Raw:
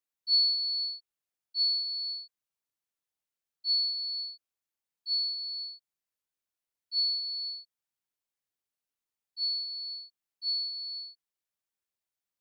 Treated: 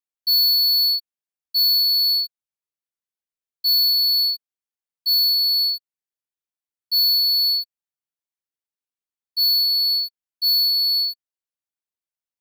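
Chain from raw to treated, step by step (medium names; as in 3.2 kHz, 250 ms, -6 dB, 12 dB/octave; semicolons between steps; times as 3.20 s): waveshaping leveller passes 5; trim +3.5 dB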